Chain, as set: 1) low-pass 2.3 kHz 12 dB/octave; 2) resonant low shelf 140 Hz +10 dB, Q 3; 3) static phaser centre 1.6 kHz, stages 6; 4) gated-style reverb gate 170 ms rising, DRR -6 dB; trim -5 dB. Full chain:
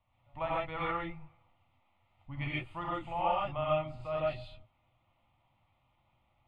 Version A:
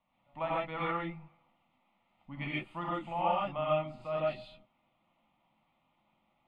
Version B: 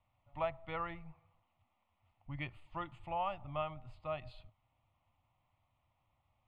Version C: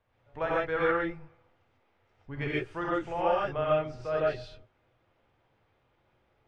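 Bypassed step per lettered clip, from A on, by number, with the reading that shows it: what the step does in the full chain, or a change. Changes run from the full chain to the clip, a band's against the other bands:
2, 250 Hz band +2.0 dB; 4, momentary loudness spread change +2 LU; 3, momentary loudness spread change -3 LU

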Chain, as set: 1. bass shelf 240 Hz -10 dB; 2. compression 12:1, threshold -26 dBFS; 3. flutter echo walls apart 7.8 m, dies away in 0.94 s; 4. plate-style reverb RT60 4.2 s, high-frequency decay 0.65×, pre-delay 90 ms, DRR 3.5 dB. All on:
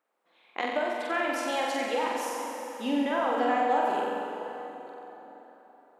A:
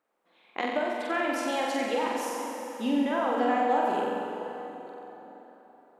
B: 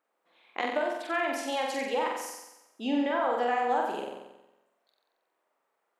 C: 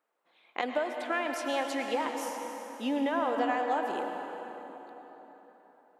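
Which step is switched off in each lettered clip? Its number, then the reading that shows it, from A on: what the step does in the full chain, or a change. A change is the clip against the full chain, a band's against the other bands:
1, 250 Hz band +2.5 dB; 4, crest factor change +1.5 dB; 3, echo-to-direct 3.0 dB to -3.5 dB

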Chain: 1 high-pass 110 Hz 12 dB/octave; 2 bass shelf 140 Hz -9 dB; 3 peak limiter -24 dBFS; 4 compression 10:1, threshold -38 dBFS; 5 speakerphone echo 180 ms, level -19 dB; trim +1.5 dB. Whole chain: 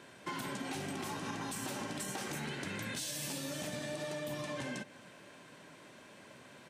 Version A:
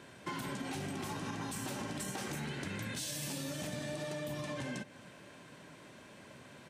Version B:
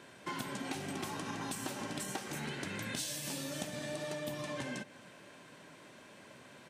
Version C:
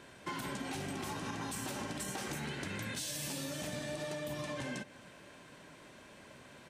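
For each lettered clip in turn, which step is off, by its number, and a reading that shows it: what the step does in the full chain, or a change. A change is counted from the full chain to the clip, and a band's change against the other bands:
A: 2, 125 Hz band +4.0 dB; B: 3, crest factor change +5.0 dB; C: 1, 125 Hz band +1.5 dB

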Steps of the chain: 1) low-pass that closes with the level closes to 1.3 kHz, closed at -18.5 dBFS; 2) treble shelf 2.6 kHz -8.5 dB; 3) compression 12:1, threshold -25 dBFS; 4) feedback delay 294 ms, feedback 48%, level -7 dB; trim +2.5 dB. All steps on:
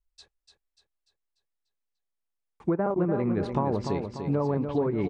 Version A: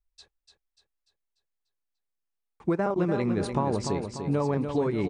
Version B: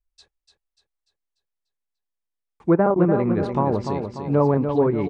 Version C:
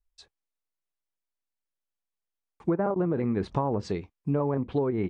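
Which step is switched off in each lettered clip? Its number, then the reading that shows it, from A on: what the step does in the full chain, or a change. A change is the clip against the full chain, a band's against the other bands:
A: 1, 4 kHz band +5.5 dB; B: 3, mean gain reduction 5.0 dB; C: 4, echo-to-direct -6.0 dB to none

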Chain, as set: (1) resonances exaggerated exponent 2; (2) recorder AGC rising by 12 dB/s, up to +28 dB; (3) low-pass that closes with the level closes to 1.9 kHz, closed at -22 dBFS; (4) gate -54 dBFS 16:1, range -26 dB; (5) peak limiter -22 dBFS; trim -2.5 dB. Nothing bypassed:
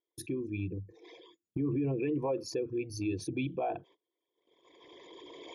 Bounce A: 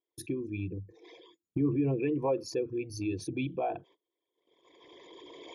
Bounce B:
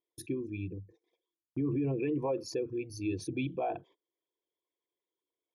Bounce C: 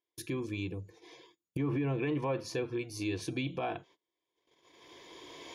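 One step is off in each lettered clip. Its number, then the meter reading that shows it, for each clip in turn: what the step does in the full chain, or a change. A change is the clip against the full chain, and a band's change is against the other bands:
5, crest factor change +3.5 dB; 2, momentary loudness spread change -9 LU; 1, 2 kHz band +5.0 dB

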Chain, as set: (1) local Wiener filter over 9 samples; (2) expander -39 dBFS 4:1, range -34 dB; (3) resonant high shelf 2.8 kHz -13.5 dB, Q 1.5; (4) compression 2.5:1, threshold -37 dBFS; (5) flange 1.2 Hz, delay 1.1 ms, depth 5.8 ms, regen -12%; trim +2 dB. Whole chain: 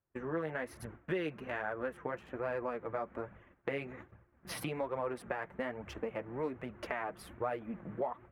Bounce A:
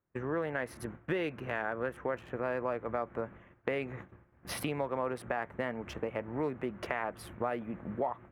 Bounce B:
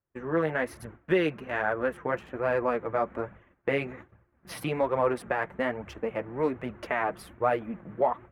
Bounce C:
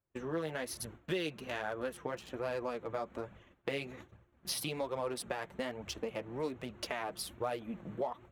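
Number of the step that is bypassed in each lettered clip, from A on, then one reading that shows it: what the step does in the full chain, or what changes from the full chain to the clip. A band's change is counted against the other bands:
5, loudness change +3.0 LU; 4, mean gain reduction 7.0 dB; 3, 8 kHz band +10.5 dB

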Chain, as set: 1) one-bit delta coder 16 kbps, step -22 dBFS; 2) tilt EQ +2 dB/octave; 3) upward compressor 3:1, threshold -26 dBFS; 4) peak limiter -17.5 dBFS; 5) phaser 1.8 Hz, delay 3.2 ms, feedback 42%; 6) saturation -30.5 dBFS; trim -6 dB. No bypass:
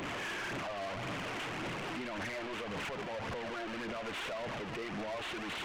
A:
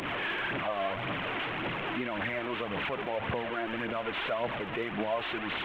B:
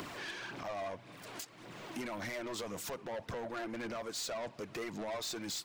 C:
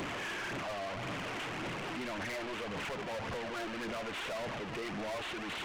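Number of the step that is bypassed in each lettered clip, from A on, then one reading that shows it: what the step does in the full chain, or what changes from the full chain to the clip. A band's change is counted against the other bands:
6, distortion -8 dB; 1, 8 kHz band +10.0 dB; 4, mean gain reduction 1.5 dB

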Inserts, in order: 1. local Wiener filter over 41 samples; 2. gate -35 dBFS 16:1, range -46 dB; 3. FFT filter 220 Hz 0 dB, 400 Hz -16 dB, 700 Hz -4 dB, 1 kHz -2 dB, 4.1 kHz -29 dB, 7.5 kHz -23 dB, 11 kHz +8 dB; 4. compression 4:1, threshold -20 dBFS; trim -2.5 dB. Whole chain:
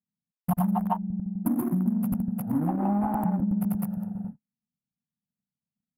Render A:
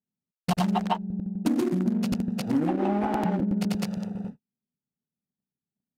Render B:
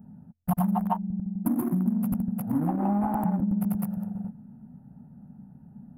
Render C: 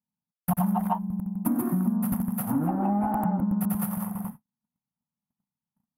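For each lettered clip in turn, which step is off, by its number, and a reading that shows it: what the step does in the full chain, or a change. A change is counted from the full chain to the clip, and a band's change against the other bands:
3, 500 Hz band +7.0 dB; 2, momentary loudness spread change +3 LU; 1, 1 kHz band +1.5 dB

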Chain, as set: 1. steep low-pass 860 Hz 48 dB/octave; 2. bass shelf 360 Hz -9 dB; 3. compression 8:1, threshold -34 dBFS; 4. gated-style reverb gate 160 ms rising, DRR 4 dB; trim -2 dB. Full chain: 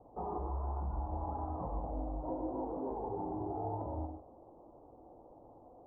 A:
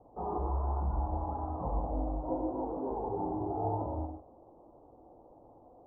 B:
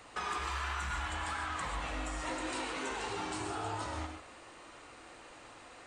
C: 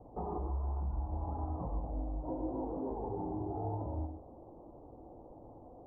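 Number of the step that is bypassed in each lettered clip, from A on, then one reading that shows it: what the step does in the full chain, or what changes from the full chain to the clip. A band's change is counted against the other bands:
3, mean gain reduction 2.5 dB; 1, 1 kHz band +6.0 dB; 2, 1 kHz band -4.0 dB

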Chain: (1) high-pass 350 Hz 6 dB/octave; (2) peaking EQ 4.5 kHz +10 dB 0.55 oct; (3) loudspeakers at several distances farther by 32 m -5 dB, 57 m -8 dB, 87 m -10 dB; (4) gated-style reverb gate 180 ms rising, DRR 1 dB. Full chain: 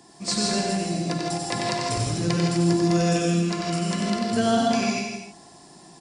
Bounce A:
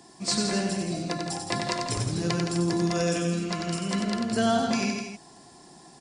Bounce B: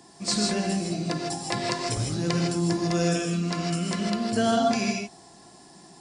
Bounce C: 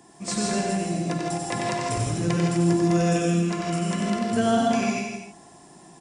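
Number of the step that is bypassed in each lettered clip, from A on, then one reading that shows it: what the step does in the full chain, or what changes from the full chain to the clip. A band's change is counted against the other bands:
4, echo-to-direct 2.5 dB to -2.5 dB; 3, echo-to-direct 2.5 dB to -1.0 dB; 2, 4 kHz band -6.0 dB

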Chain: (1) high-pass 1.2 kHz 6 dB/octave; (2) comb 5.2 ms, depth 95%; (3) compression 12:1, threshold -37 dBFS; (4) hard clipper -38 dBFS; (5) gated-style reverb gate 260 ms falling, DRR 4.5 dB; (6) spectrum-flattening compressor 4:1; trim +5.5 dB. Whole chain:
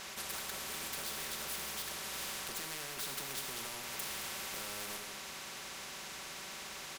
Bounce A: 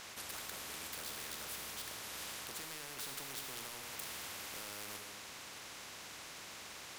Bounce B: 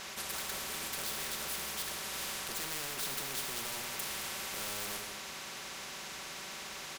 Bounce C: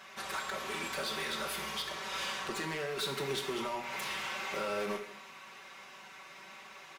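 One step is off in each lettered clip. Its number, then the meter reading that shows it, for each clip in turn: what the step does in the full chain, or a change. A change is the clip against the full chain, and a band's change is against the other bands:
2, crest factor change +3.5 dB; 3, mean gain reduction 2.0 dB; 6, 8 kHz band -12.0 dB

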